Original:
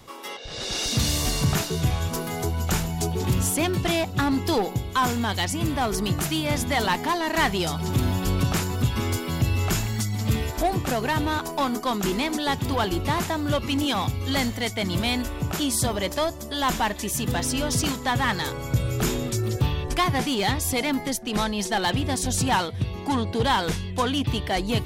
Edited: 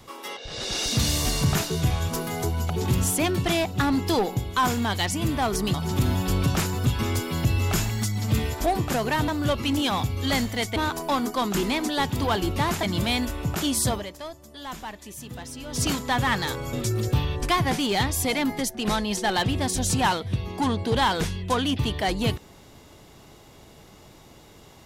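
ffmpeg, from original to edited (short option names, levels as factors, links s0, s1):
-filter_complex "[0:a]asplit=9[s0][s1][s2][s3][s4][s5][s6][s7][s8];[s0]atrim=end=2.702[s9];[s1]atrim=start=3.088:end=6.132[s10];[s2]atrim=start=7.708:end=11.252[s11];[s3]atrim=start=13.318:end=14.802[s12];[s4]atrim=start=11.248:end=13.322[s13];[s5]atrim=start=14.798:end=16.1,asetpts=PTS-STARTPTS,afade=t=out:st=1.102:d=0.2:c=qua:silence=0.237137[s14];[s6]atrim=start=16.1:end=17.6,asetpts=PTS-STARTPTS,volume=0.237[s15];[s7]atrim=start=17.6:end=18.702,asetpts=PTS-STARTPTS,afade=t=in:d=0.2:c=qua:silence=0.237137[s16];[s8]atrim=start=19.208[s17];[s9][s10]acrossfade=d=0.004:c1=hsin:c2=hsin[s18];[s18][s11]acrossfade=d=0.004:c1=hsin:c2=hsin[s19];[s19][s12]acrossfade=d=0.004:c1=hsin:c2=hsin[s20];[s20][s13]acrossfade=d=0.004:c1=hsin:c2=hsin[s21];[s14][s15][s16]concat=n=3:v=0:a=1[s22];[s21][s22]acrossfade=d=0.004:c1=hsin:c2=hsin[s23];[s23][s17]acrossfade=d=0.004:c1=hsin:c2=hsin"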